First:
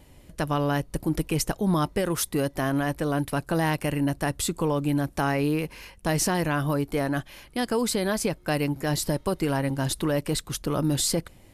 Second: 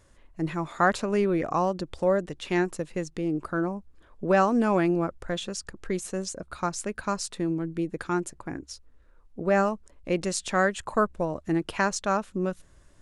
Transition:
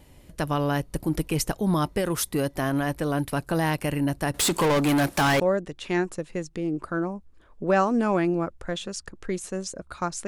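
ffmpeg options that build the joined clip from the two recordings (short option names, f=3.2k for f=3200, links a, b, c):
-filter_complex "[0:a]asettb=1/sr,asplit=3[a][b][c];[a]atrim=end=4.344[d];[b]atrim=start=4.34:end=5.4,asetpts=PTS-STARTPTS,afade=t=in:d=0.004:c=qsin,afade=t=out:st=1.056:d=0.004:c=qsin,asplit=2[e][f];[f]highpass=f=720:p=1,volume=26dB,asoftclip=type=tanh:threshold=-15dB[g];[e][g]amix=inputs=2:normalize=0,lowpass=f=7.9k:p=1,volume=-6dB[h];[c]atrim=start=5.396[i];[d][h]acrossfade=d=0.004:c1=hsin:c2=qsin[j];[j][i]acrossfade=d=0.004:c1=qsin:c2=hsin,apad=whole_dur=10.27,atrim=end=10.27,atrim=end=5.402[k];[1:a]atrim=start=2.008:end=6.88[l];[k][l]acrossfade=d=0.004:c1=hsin:c2=hsin"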